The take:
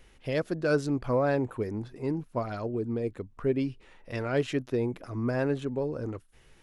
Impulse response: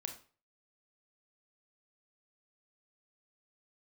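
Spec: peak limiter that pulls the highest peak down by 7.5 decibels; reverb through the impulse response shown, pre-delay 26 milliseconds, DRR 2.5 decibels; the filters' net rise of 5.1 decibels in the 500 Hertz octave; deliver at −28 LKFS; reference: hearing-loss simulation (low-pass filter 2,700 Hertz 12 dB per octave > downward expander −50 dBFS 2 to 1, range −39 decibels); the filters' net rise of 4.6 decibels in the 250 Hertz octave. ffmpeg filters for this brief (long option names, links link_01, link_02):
-filter_complex "[0:a]equalizer=frequency=250:width_type=o:gain=4,equalizer=frequency=500:width_type=o:gain=5,alimiter=limit=-17dB:level=0:latency=1,asplit=2[link_01][link_02];[1:a]atrim=start_sample=2205,adelay=26[link_03];[link_02][link_03]afir=irnorm=-1:irlink=0,volume=-0.5dB[link_04];[link_01][link_04]amix=inputs=2:normalize=0,lowpass=2700,agate=range=-39dB:threshold=-50dB:ratio=2,volume=-2dB"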